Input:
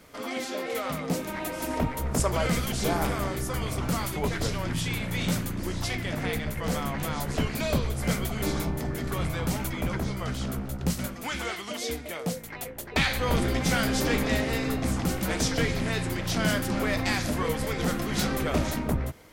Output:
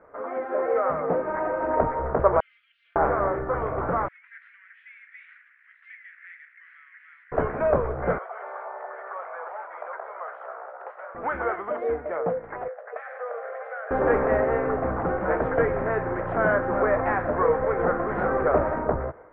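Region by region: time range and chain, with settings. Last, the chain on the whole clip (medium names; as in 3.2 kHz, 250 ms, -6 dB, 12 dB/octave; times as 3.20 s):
2.40–2.96 s: elliptic high-pass 2.9 kHz, stop band 70 dB + comb 4.3 ms, depth 33%
4.08–7.32 s: self-modulated delay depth 0.089 ms + steep high-pass 1.9 kHz 48 dB/octave + distance through air 140 m
8.18–11.15 s: inverse Chebyshev high-pass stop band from 230 Hz, stop band 50 dB + compression 2.5:1, threshold -40 dBFS
12.68–13.91 s: rippled Chebyshev high-pass 450 Hz, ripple 3 dB + band-stop 950 Hz, Q 5.9 + compression 4:1, threshold -39 dBFS
whole clip: level rider gain up to 5 dB; steep low-pass 1.6 kHz 36 dB/octave; resonant low shelf 330 Hz -10.5 dB, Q 1.5; trim +2.5 dB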